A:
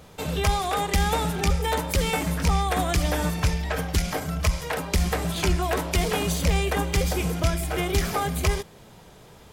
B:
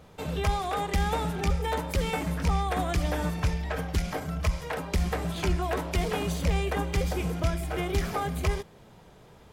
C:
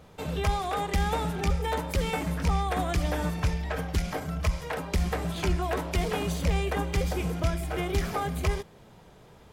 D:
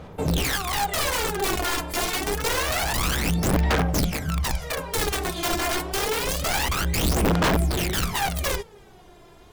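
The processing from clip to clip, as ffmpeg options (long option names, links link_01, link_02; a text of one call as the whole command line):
ffmpeg -i in.wav -af "highshelf=frequency=3500:gain=-7.5,volume=-3.5dB" out.wav
ffmpeg -i in.wav -af anull out.wav
ffmpeg -i in.wav -af "aeval=exprs='(mod(15.8*val(0)+1,2)-1)/15.8':channel_layout=same,aphaser=in_gain=1:out_gain=1:delay=2.9:decay=0.67:speed=0.27:type=sinusoidal,volume=2dB" out.wav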